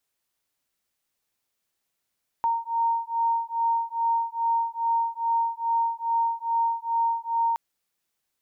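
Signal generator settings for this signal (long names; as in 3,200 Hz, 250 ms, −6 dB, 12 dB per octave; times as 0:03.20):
two tones that beat 922 Hz, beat 2.4 Hz, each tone −25.5 dBFS 5.12 s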